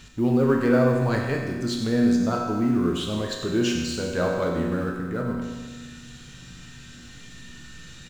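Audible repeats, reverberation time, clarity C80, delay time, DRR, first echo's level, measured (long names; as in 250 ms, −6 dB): 1, 1.5 s, 3.5 dB, 96 ms, −1.0 dB, −10.0 dB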